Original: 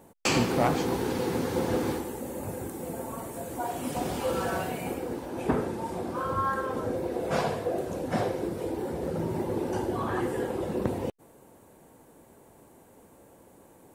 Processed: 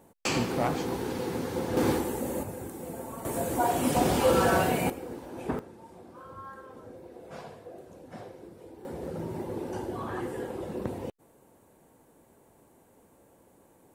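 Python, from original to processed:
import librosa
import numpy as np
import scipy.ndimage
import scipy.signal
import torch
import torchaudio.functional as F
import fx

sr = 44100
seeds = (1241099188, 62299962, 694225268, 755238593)

y = fx.gain(x, sr, db=fx.steps((0.0, -3.5), (1.77, 4.0), (2.43, -3.0), (3.25, 6.5), (4.9, -5.5), (5.59, -16.0), (8.85, -5.0)))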